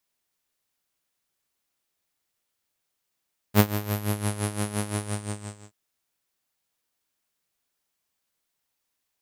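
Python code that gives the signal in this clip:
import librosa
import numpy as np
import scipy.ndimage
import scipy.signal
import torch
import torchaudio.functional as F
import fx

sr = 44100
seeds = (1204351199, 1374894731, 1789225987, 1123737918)

y = fx.sub_patch_tremolo(sr, seeds[0], note=56, wave='saw', wave2='saw', interval_st=-12, detune_cents=14, level2_db=-9.0, sub_db=-2, noise_db=-16.5, kind='lowpass', cutoff_hz=7600.0, q=8.8, env_oct=1.0, env_decay_s=0.75, env_sustain_pct=45, attack_ms=61.0, decay_s=0.07, sustain_db=-13.0, release_s=0.83, note_s=1.35, lfo_hz=5.8, tremolo_db=12.5)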